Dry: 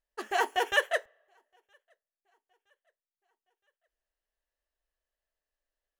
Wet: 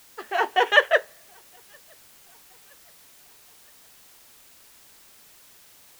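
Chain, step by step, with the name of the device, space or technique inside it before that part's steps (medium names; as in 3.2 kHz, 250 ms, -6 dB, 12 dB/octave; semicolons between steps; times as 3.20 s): dictaphone (band-pass 290–3800 Hz; level rider gain up to 11.5 dB; wow and flutter; white noise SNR 23 dB)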